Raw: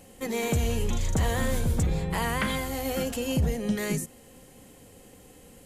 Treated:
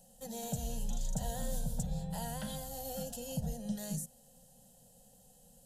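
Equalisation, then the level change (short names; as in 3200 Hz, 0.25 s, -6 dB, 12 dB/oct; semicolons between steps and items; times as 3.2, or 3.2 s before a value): fixed phaser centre 310 Hz, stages 6; fixed phaser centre 920 Hz, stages 4; -5.0 dB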